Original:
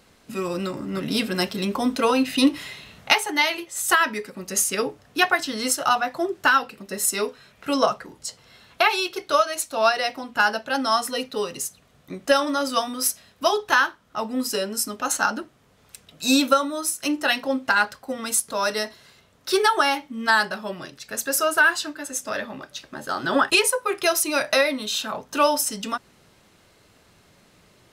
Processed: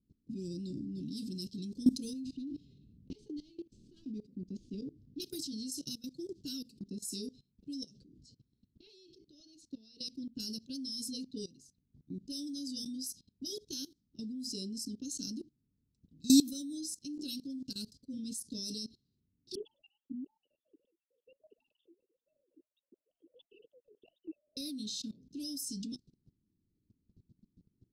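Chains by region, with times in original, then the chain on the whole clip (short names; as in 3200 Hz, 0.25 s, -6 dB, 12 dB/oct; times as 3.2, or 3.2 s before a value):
2.13–5.2 CVSD 64 kbps + LPF 1800 Hz 6 dB/oct + compressor, threshold -24 dBFS
7.83–9.99 Bessel low-pass 9900 Hz + compressor 5:1, threshold -26 dBFS
19.55–24.57 sine-wave speech + flange 1.5 Hz, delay 3.6 ms, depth 9.1 ms, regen +11% + brick-wall FIR band-stop 1000–2600 Hz
whole clip: low-pass opened by the level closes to 1300 Hz, open at -17.5 dBFS; elliptic band-stop 290–4700 Hz, stop band 50 dB; level quantiser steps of 20 dB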